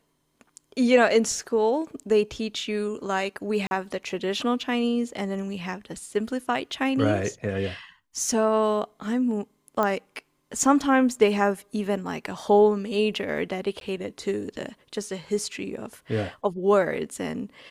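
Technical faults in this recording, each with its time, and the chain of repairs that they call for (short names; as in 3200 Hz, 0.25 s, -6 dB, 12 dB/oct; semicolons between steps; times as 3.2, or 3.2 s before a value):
3.67–3.71 gap 41 ms
9.83 pop -12 dBFS
13.8–13.81 gap 12 ms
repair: de-click; interpolate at 3.67, 41 ms; interpolate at 13.8, 12 ms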